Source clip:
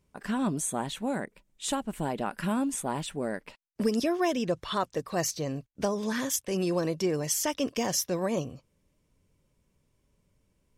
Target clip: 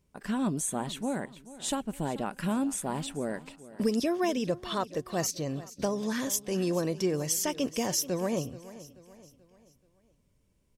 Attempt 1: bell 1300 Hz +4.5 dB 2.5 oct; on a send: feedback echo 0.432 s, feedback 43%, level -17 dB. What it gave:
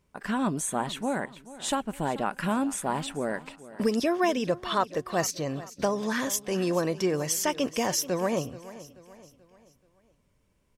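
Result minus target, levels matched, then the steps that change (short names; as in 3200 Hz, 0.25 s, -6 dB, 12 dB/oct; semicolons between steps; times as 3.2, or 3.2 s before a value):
1000 Hz band +4.0 dB
change: bell 1300 Hz -3 dB 2.5 oct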